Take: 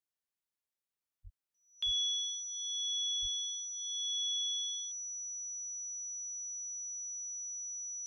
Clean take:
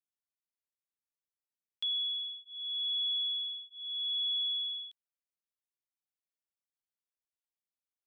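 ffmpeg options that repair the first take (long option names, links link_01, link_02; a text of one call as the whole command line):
ffmpeg -i in.wav -filter_complex "[0:a]bandreject=frequency=5900:width=30,asplit=3[link_01][link_02][link_03];[link_01]afade=type=out:start_time=1.23:duration=0.02[link_04];[link_02]highpass=frequency=140:width=0.5412,highpass=frequency=140:width=1.3066,afade=type=in:start_time=1.23:duration=0.02,afade=type=out:start_time=1.35:duration=0.02[link_05];[link_03]afade=type=in:start_time=1.35:duration=0.02[link_06];[link_04][link_05][link_06]amix=inputs=3:normalize=0,asplit=3[link_07][link_08][link_09];[link_07]afade=type=out:start_time=1.85:duration=0.02[link_10];[link_08]highpass=frequency=140:width=0.5412,highpass=frequency=140:width=1.3066,afade=type=in:start_time=1.85:duration=0.02,afade=type=out:start_time=1.97:duration=0.02[link_11];[link_09]afade=type=in:start_time=1.97:duration=0.02[link_12];[link_10][link_11][link_12]amix=inputs=3:normalize=0,asplit=3[link_13][link_14][link_15];[link_13]afade=type=out:start_time=3.21:duration=0.02[link_16];[link_14]highpass=frequency=140:width=0.5412,highpass=frequency=140:width=1.3066,afade=type=in:start_time=3.21:duration=0.02,afade=type=out:start_time=3.33:duration=0.02[link_17];[link_15]afade=type=in:start_time=3.33:duration=0.02[link_18];[link_16][link_17][link_18]amix=inputs=3:normalize=0,asetnsamples=nb_out_samples=441:pad=0,asendcmd='2.43 volume volume 3.5dB',volume=0dB" out.wav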